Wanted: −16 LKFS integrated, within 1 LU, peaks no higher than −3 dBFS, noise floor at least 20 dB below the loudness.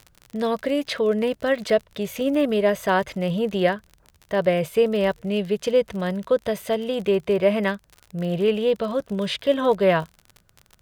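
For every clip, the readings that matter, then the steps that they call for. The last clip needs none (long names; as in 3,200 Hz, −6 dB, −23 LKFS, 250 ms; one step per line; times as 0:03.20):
crackle rate 45 per second; integrated loudness −23.0 LKFS; sample peak −8.0 dBFS; target loudness −16.0 LKFS
→ click removal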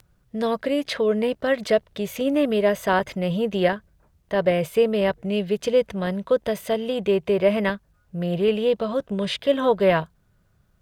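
crackle rate 1.6 per second; integrated loudness −23.0 LKFS; sample peak −8.0 dBFS; target loudness −16.0 LKFS
→ level +7 dB
brickwall limiter −3 dBFS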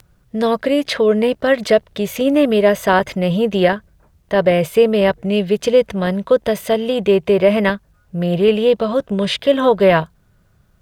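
integrated loudness −16.0 LKFS; sample peak −3.0 dBFS; background noise floor −56 dBFS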